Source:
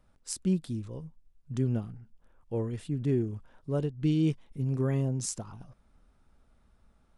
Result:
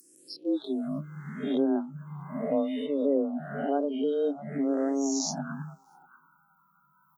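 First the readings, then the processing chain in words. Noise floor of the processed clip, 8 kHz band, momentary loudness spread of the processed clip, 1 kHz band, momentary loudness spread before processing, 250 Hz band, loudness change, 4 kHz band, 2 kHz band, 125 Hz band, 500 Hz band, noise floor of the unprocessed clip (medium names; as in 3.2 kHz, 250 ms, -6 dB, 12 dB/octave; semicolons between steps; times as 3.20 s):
-66 dBFS, +2.5 dB, 12 LU, +12.0 dB, 16 LU, +3.5 dB, +1.5 dB, +5.5 dB, +6.5 dB, -12.0 dB, +7.0 dB, -66 dBFS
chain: reverse spectral sustain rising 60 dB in 1.48 s; frequency shift +140 Hz; touch-sensitive phaser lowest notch 480 Hz, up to 2.3 kHz, full sweep at -23.5 dBFS; treble shelf 7.4 kHz +10 dB; in parallel at +3 dB: compression 8:1, threshold -35 dBFS, peak gain reduction 13.5 dB; on the sum: peaking EQ 1.6 kHz +3 dB 0.38 oct; gain riding within 4 dB 0.5 s; on a send: delay 643 ms -14.5 dB; on the sum: spectral noise reduction 28 dB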